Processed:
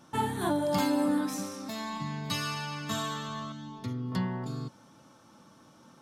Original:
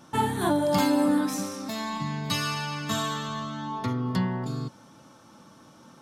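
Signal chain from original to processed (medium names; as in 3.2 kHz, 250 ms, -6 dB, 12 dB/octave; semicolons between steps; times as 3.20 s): 3.52–4.12 s: peaking EQ 1 kHz -11 dB 2.2 oct; trim -4.5 dB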